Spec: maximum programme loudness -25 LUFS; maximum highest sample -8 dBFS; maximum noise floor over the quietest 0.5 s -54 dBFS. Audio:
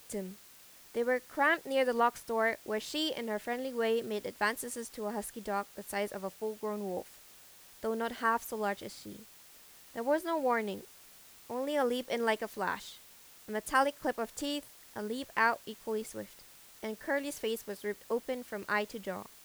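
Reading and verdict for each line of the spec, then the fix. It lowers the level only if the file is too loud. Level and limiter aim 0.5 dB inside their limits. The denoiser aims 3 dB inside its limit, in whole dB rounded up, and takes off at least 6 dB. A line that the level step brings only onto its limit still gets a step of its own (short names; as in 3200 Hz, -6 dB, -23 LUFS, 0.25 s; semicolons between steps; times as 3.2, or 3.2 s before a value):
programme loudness -34.0 LUFS: OK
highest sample -14.5 dBFS: OK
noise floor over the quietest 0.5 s -56 dBFS: OK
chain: none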